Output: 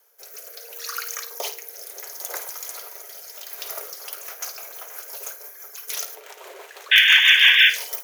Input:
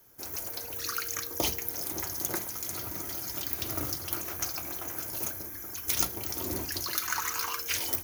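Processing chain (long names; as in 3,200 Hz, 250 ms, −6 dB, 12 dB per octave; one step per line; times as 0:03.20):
0:06.15–0:06.96: running median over 9 samples
Chebyshev high-pass filter 420 Hz, order 6
0:06.91–0:07.70: sound drawn into the spectrogram noise 1,500–3,600 Hz −13 dBFS
in parallel at +0.5 dB: brickwall limiter −11 dBFS, peak gain reduction 10 dB
on the sum: rotating-speaker cabinet horn 0.7 Hz, later 6 Hz, at 0:03.47
on a send: flutter between parallel walls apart 9 metres, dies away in 0.27 s
on the sum: level −2 dB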